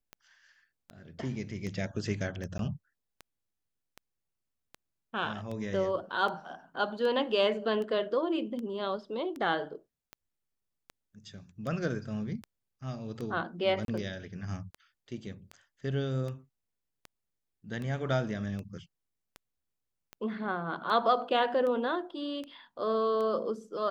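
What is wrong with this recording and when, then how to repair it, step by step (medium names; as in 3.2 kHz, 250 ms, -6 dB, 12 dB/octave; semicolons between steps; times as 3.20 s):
tick 78 rpm -27 dBFS
2.58–2.59 s: dropout 12 ms
13.85–13.88 s: dropout 32 ms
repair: de-click; interpolate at 2.58 s, 12 ms; interpolate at 13.85 s, 32 ms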